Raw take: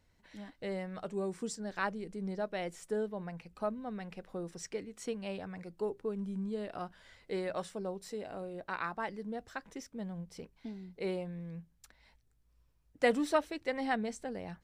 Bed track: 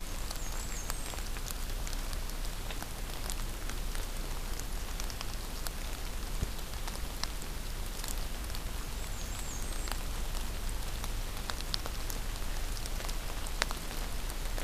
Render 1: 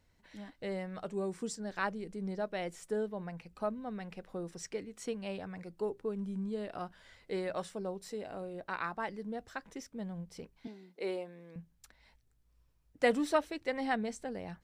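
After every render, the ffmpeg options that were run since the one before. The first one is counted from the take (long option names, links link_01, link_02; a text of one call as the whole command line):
ffmpeg -i in.wav -filter_complex "[0:a]asettb=1/sr,asplit=3[link_01][link_02][link_03];[link_01]atrim=end=10.674[link_04];[link_02]atrim=start=10.67:end=11.56,asetpts=PTS-STARTPTS,afade=type=in:duration=0.004:curve=qsin,afade=type=out:start_time=0.886:duration=0.004:curve=qsin,highpass=frequency=250:width=0.5412,highpass=frequency=250:width=1.3066[link_05];[link_03]atrim=start=11.556[link_06];[link_04][link_05]acrossfade=duration=0.004:curve1=hsin:curve2=qsin[link_07];[link_07][link_06]acrossfade=duration=0.004:curve1=qsin:curve2=hsin" out.wav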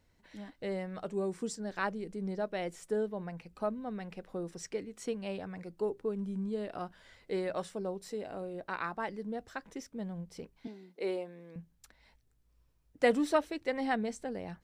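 ffmpeg -i in.wav -af "equalizer=frequency=350:width_type=o:width=1.7:gain=2.5" out.wav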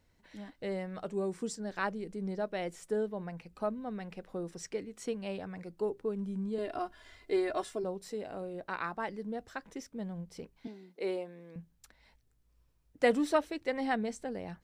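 ffmpeg -i in.wav -filter_complex "[0:a]asettb=1/sr,asplit=3[link_01][link_02][link_03];[link_01]atrim=end=6.584[link_04];[link_02]atrim=start=6.58:end=7.84,asetpts=PTS-STARTPTS,afade=type=in:duration=0.004:curve=qsin,afade=type=out:start_time=1.256:duration=0.004:curve=qsin,aecho=1:1:2.9:0.97,atrim=end_sample=55566[link_05];[link_03]atrim=start=7.836[link_06];[link_04][link_05]acrossfade=duration=0.004:curve1=hsin:curve2=qsin[link_07];[link_07][link_06]acrossfade=duration=0.004:curve1=qsin:curve2=hsin" out.wav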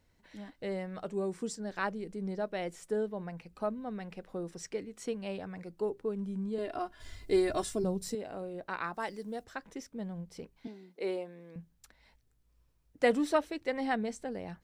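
ffmpeg -i in.wav -filter_complex "[0:a]asettb=1/sr,asplit=3[link_01][link_02][link_03];[link_01]atrim=end=7.004[link_04];[link_02]atrim=start=7:end=8.15,asetpts=PTS-STARTPTS,afade=type=in:duration=0.004:curve=qsin,afade=type=out:start_time=1.146:duration=0.004:curve=qsin,bass=frequency=250:gain=15,treble=frequency=4000:gain=10[link_05];[link_03]atrim=start=8.146[link_06];[link_04][link_05]acrossfade=duration=0.004:curve1=hsin:curve2=qsin[link_07];[link_07][link_06]acrossfade=duration=0.004:curve1=qsin:curve2=hsin,asplit=3[link_08][link_09][link_10];[link_08]afade=type=out:start_time=8.93:duration=0.02[link_11];[link_09]bass=frequency=250:gain=-4,treble=frequency=4000:gain=12,afade=type=in:start_time=8.93:duration=0.02,afade=type=out:start_time=9.43:duration=0.02[link_12];[link_10]afade=type=in:start_time=9.43:duration=0.02[link_13];[link_11][link_12][link_13]amix=inputs=3:normalize=0" out.wav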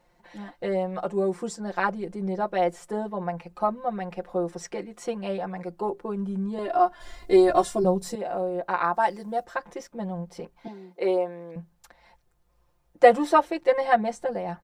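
ffmpeg -i in.wav -af "equalizer=frequency=800:width=0.78:gain=12.5,aecho=1:1:5.7:1" out.wav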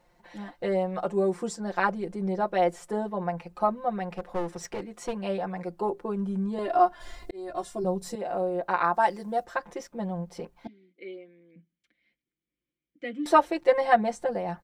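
ffmpeg -i in.wav -filter_complex "[0:a]asettb=1/sr,asplit=3[link_01][link_02][link_03];[link_01]atrim=end=4.164[link_04];[link_02]atrim=start=4.16:end=5.13,asetpts=PTS-STARTPTS,afade=type=in:duration=0.004:curve=qsin,afade=type=out:start_time=0.966:duration=0.004:curve=qsin,aeval=exprs='clip(val(0),-1,0.0188)':channel_layout=same[link_05];[link_03]atrim=start=5.126[link_06];[link_04][link_05]acrossfade=duration=0.004:curve1=hsin:curve2=qsin[link_07];[link_07][link_06]acrossfade=duration=0.004:curve1=qsin:curve2=hsin,asettb=1/sr,asplit=3[link_08][link_09][link_10];[link_08]atrim=end=10.674[link_11];[link_09]atrim=start=10.67:end=13.26,asetpts=PTS-STARTPTS,afade=type=in:duration=0.004:curve=qsin,afade=type=out:start_time=2.586:duration=0.004:curve=qsin,asplit=3[link_12][link_13][link_14];[link_12]bandpass=frequency=270:width_type=q:width=8,volume=0dB[link_15];[link_13]bandpass=frequency=2290:width_type=q:width=8,volume=-6dB[link_16];[link_14]bandpass=frequency=3010:width_type=q:width=8,volume=-9dB[link_17];[link_15][link_16][link_17]amix=inputs=3:normalize=0[link_18];[link_10]atrim=start=13.256[link_19];[link_11][link_18]acrossfade=duration=0.004:curve1=hsin:curve2=qsin[link_20];[link_20][link_19]acrossfade=duration=0.004:curve1=qsin:curve2=hsin,asplit=2[link_21][link_22];[link_21]atrim=end=7.31,asetpts=PTS-STARTPTS,afade=type=out:start_time=7.306:duration=0.004:curve=hsin[link_23];[link_22]atrim=start=7.31,asetpts=PTS-STARTPTS,afade=type=in:duration=1.11[link_24];[link_23][link_24]concat=n=2:v=0:a=1" out.wav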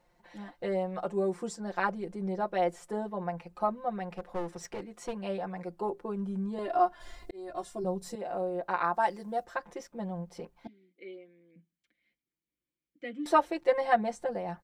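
ffmpeg -i in.wav -af "volume=-4.5dB" out.wav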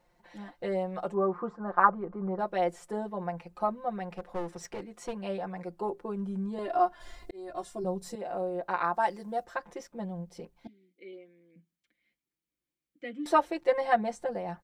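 ffmpeg -i in.wav -filter_complex "[0:a]asettb=1/sr,asplit=3[link_01][link_02][link_03];[link_01]atrim=end=1.144[link_04];[link_02]atrim=start=1.14:end=2.39,asetpts=PTS-STARTPTS,afade=type=in:duration=0.004:curve=qsin,afade=type=out:start_time=1.246:duration=0.004:curve=qsin,lowpass=frequency=1200:width_type=q:width=5.6[link_05];[link_03]atrim=start=2.386[link_06];[link_04][link_05]acrossfade=duration=0.004:curve1=hsin:curve2=qsin[link_07];[link_07][link_06]acrossfade=duration=0.004:curve1=qsin:curve2=hsin,asettb=1/sr,asplit=3[link_08][link_09][link_10];[link_08]atrim=end=10.054[link_11];[link_09]atrim=start=10.05:end=11.13,asetpts=PTS-STARTPTS,afade=type=in:duration=0.004:curve=qsin,afade=type=out:start_time=1.076:duration=0.004:curve=qsin,equalizer=frequency=1100:width=0.75:gain=-6.5[link_12];[link_10]atrim=start=11.126[link_13];[link_11][link_12]acrossfade=duration=0.004:curve1=hsin:curve2=qsin[link_14];[link_14][link_13]acrossfade=duration=0.004:curve1=qsin:curve2=hsin" out.wav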